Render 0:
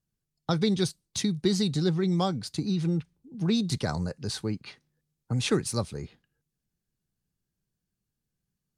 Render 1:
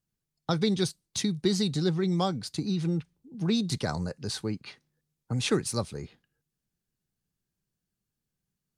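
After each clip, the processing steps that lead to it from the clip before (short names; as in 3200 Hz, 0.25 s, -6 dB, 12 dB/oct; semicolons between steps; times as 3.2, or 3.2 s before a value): low shelf 150 Hz -3.5 dB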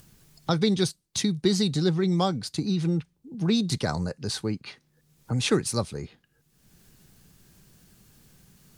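upward compressor, threshold -38 dBFS; gain +3 dB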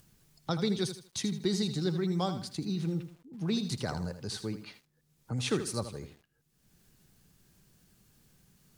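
lo-fi delay 80 ms, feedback 35%, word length 8-bit, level -10 dB; gain -7.5 dB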